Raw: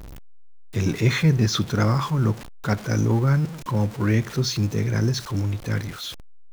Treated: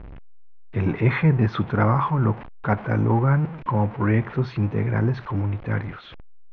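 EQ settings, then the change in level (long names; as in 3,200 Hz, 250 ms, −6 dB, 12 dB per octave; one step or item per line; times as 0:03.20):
low-pass filter 2,500 Hz 24 dB per octave
dynamic equaliser 870 Hz, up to +8 dB, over −44 dBFS, Q 1.6
0.0 dB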